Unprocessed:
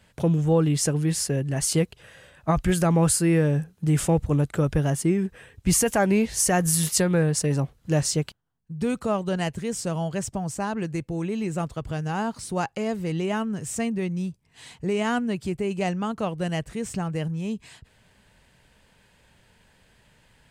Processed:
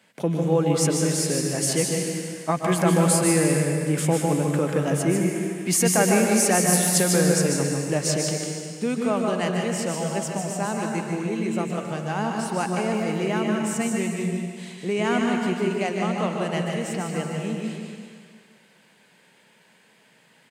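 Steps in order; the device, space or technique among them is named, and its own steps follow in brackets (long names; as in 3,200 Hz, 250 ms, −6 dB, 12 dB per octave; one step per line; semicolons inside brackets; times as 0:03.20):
PA in a hall (high-pass filter 180 Hz 24 dB per octave; parametric band 2,200 Hz +4 dB 0.26 octaves; single-tap delay 150 ms −6 dB; convolution reverb RT60 1.9 s, pre-delay 120 ms, DRR 2 dB)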